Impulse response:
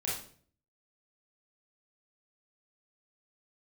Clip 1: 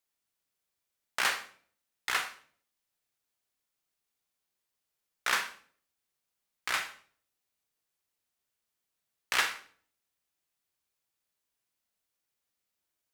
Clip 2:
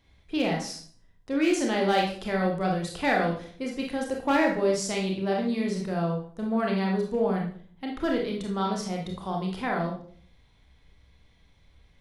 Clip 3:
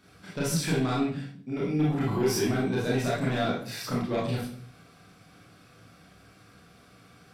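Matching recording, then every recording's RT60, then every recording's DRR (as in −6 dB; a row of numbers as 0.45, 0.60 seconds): 3; 0.50, 0.50, 0.50 seconds; 7.0, −1.0, −6.5 decibels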